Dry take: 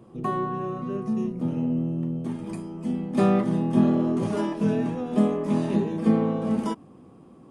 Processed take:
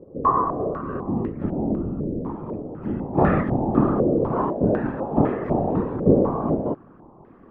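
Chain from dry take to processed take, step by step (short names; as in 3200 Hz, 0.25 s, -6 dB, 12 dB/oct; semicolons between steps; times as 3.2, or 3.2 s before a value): whisperiser; stepped low-pass 4 Hz 520–1800 Hz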